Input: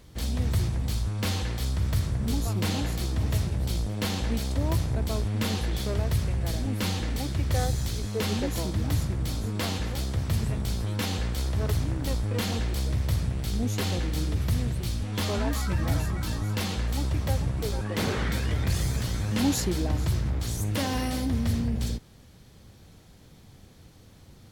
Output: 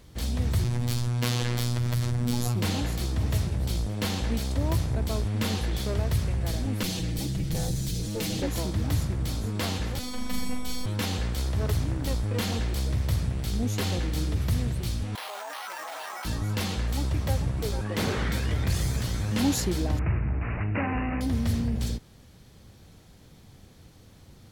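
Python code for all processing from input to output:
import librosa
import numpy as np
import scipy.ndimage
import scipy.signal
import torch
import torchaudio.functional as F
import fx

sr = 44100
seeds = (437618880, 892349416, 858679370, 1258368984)

y = fx.chain(x, sr, fx.robotise(hz=121.0),
    fx.env_flatten(amount_pct=70), at=(0.64, 2.55))
y = fx.chain(y, sr, fx.lower_of_two(delay_ms=6.2),
    fx.peak_eq(hz=1100.0, db=-11.5, octaves=2.1),
    fx.env_flatten(amount_pct=50), at=(6.83, 8.42))
y = fx.chain(y, sr, fx.comb(ms=7.4, depth=0.76),
    fx.robotise(hz=251.0),
    fx.room_flutter(wall_m=7.0, rt60_s=0.66), at=(9.99, 10.86))
y = fx.chain(y, sr, fx.resample_bad(factor=6, down='none', up='hold'),
    fx.ladder_highpass(hz=640.0, resonance_pct=40),
    fx.env_flatten(amount_pct=100), at=(15.15, 16.25))
y = fx.chain(y, sr, fx.notch(hz=520.0, q=16.0),
    fx.resample_bad(factor=8, down='none', up='filtered'), at=(19.99, 21.21))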